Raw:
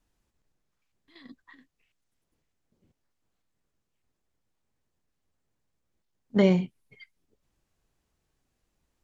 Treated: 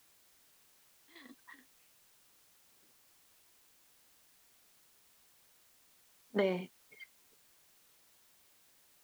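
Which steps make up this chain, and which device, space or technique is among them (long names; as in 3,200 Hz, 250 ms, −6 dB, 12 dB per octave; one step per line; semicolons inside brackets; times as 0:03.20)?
baby monitor (band-pass filter 370–3,600 Hz; downward compressor, threshold −26 dBFS, peak gain reduction 6.5 dB; white noise bed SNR 20 dB)
level −1 dB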